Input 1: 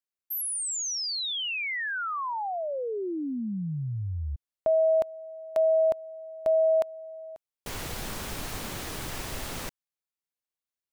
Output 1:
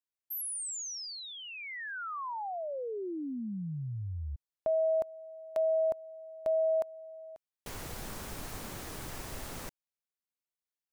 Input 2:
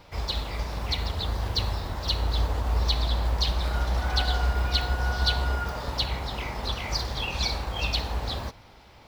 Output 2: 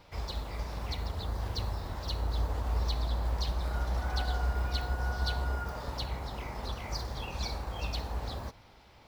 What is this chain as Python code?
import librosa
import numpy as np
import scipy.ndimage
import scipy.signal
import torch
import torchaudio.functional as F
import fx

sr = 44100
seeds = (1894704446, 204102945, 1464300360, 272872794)

y = fx.dynamic_eq(x, sr, hz=3200.0, q=0.91, threshold_db=-44.0, ratio=6.0, max_db=-8)
y = y * librosa.db_to_amplitude(-5.5)